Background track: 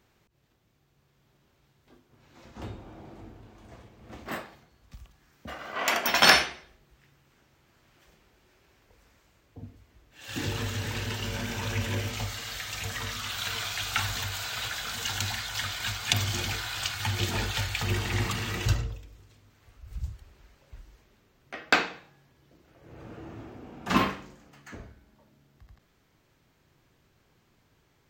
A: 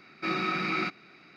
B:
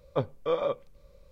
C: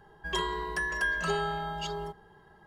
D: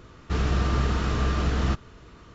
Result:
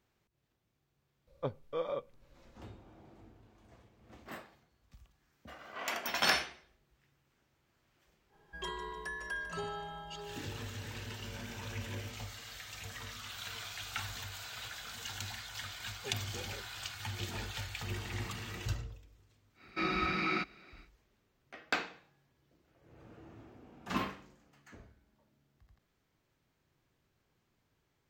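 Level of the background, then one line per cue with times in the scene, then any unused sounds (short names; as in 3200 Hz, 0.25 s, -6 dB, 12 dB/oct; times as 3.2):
background track -11 dB
1.27 add B -8.5 dB
8.29 add C -10 dB, fades 0.05 s + feedback echo 0.15 s, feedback 46%, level -11 dB
15.88 add B -4 dB + octave resonator G, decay 0.16 s
19.54 add A -3.5 dB, fades 0.10 s
not used: D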